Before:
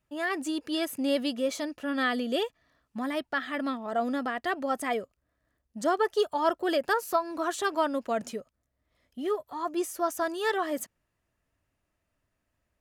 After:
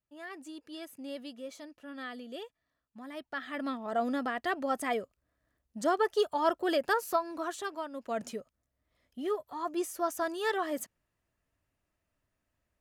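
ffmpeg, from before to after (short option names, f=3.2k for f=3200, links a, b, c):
-af "volume=9dB,afade=t=in:st=3.05:d=0.85:silence=0.251189,afade=t=out:st=7.07:d=0.83:silence=0.251189,afade=t=in:st=7.9:d=0.33:silence=0.281838"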